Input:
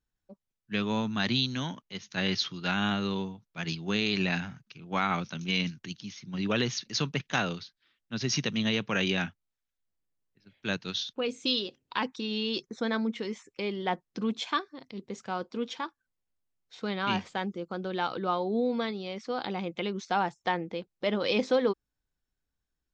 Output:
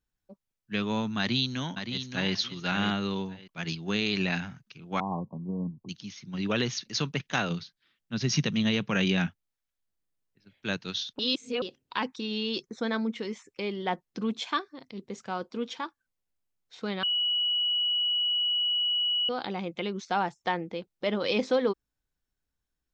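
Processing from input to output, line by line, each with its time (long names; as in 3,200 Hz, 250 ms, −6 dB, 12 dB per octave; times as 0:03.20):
0:01.19–0:02.33: delay throw 570 ms, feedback 20%, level −7.5 dB
0:05.00–0:05.89: Chebyshev low-pass filter 1,100 Hz, order 10
0:07.50–0:09.27: parametric band 160 Hz +7.5 dB
0:11.19–0:11.62: reverse
0:17.03–0:19.29: beep over 2,930 Hz −24 dBFS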